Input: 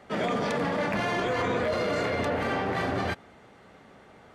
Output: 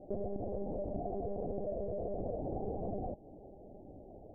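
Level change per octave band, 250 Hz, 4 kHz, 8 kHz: −10.5 dB, below −40 dB, below −35 dB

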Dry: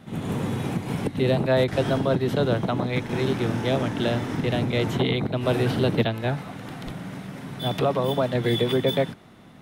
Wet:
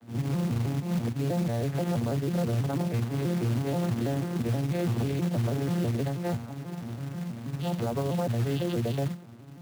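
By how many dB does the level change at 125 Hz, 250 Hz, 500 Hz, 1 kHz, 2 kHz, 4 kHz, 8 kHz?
−1.0, −3.5, −9.0, −7.5, −11.0, −12.5, 0.0 decibels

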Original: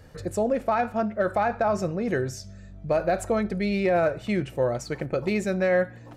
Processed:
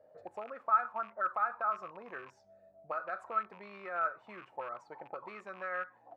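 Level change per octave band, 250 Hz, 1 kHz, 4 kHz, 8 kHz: −29.0 dB, −5.0 dB, below −20 dB, below −30 dB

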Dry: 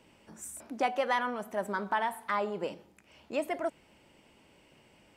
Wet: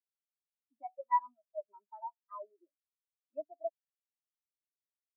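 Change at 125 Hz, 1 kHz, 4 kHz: below −40 dB, −4.5 dB, below −40 dB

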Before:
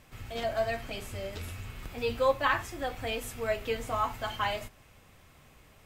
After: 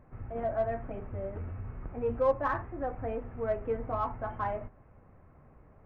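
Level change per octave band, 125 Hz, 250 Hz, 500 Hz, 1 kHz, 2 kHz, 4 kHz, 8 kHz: +1.5 dB, +1.5 dB, 0.0 dB, −2.0 dB, −9.5 dB, below −25 dB, below −30 dB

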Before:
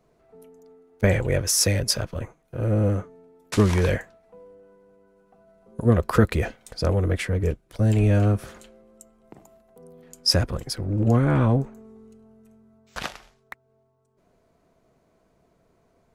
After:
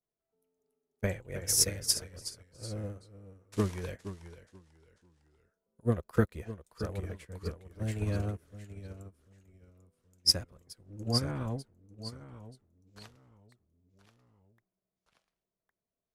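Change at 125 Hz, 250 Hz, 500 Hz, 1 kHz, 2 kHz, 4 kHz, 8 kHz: −14.0, −12.5, −12.5, −13.5, −13.5, −5.0, −4.5 decibels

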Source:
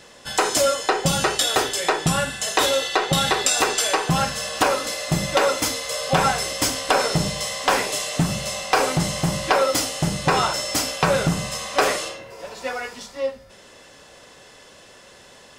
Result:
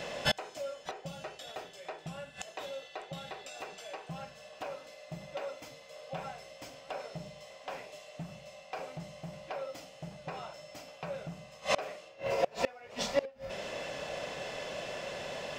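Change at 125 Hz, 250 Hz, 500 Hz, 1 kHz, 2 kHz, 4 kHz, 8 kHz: −20.5, −20.0, −14.0, −19.0, −17.5, −18.5, −25.5 decibels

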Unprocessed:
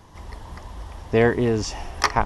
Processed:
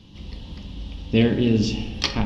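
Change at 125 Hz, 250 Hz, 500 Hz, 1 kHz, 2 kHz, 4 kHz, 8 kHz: +3.0 dB, +5.0 dB, −4.0 dB, −12.0 dB, −5.5 dB, +5.0 dB, can't be measured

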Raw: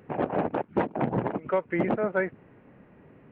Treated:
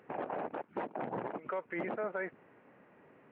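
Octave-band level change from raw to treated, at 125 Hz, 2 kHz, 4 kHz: −17.5 dB, −8.0 dB, can't be measured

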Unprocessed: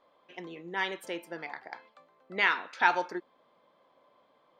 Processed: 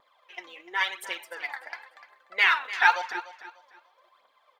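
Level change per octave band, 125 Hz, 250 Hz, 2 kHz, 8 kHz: below −15 dB, below −10 dB, +6.0 dB, can't be measured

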